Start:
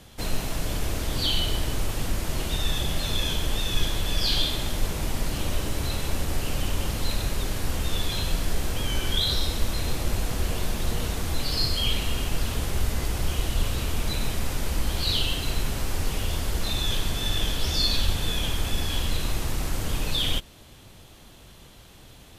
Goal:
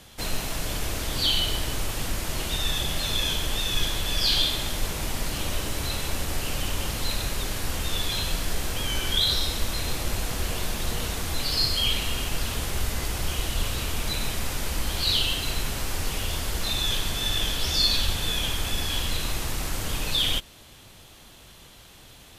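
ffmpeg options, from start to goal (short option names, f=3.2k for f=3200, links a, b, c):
-af "tiltshelf=f=710:g=-3"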